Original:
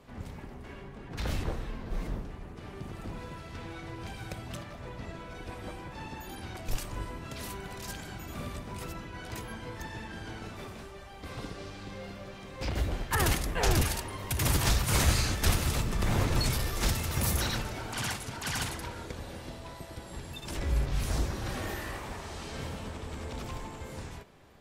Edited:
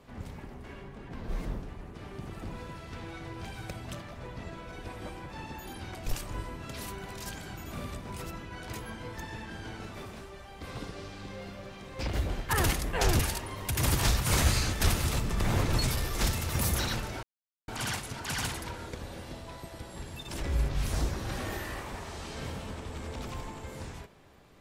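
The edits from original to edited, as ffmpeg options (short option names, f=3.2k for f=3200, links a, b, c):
-filter_complex "[0:a]asplit=3[a][b][c];[a]atrim=end=1.142[d];[b]atrim=start=1.758:end=17.85,asetpts=PTS-STARTPTS,afade=t=out:st=16.088:d=0.004:c=hsin,apad=pad_dur=0.45[e];[c]atrim=start=17.85,asetpts=PTS-STARTPTS,afade=t=in:d=0.004:c=hsin[f];[e][f]concat=n=2:v=0:a=1[g];[d][g]acrossfade=d=0.004:c1=hsin:c2=hsin"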